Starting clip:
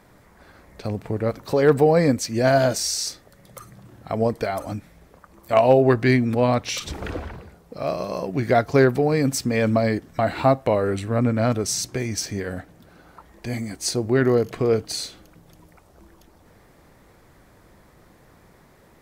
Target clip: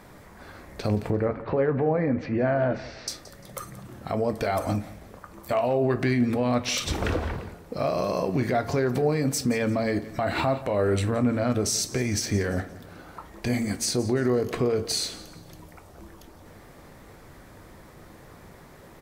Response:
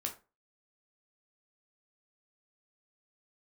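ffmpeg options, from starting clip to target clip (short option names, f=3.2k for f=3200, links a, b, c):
-filter_complex "[0:a]asettb=1/sr,asplit=3[a][b][c];[a]atrim=end=1.104[d];[b]atrim=start=1.1:end=3.08,asetpts=PTS-STARTPTS,afade=t=in:d=0.004:c=qsin,afade=t=out:st=1.976:d=0.004:c=qsin,lowpass=f=2.3k:w=0.5412,lowpass=f=2.3k:w=1.3066[e];[c]atrim=start=3.076[f];[d][e]acrossfade=d=0.004:c1=hsin:c2=qsin[g];[g][f]acrossfade=d=0.004:c1=qsin:c2=hsin,alimiter=limit=-21dB:level=0:latency=1:release=124,aecho=1:1:174|348|522:0.133|0.0467|0.0163,asplit=2[h][i];[1:a]atrim=start_sample=2205[j];[i][j]afir=irnorm=-1:irlink=0,volume=-2dB[k];[h][k]amix=inputs=2:normalize=0"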